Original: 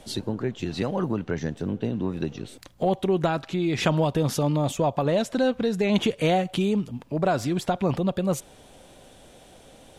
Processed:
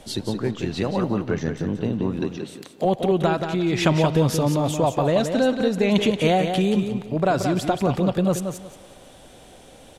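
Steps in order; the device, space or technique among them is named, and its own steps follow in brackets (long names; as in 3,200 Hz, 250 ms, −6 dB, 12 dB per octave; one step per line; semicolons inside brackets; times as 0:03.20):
filtered reverb send (on a send at −17.5 dB: high-pass filter 400 Hz + low-pass filter 5,300 Hz + convolution reverb RT60 2.7 s, pre-delay 67 ms)
0:02.20–0:02.85: on the sum: high-pass filter 190 Hz 12 dB per octave
repeating echo 178 ms, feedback 23%, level −7 dB
level +2.5 dB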